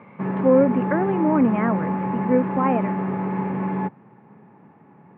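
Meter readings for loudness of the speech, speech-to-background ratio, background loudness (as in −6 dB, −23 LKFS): −22.0 LKFS, 3.5 dB, −25.5 LKFS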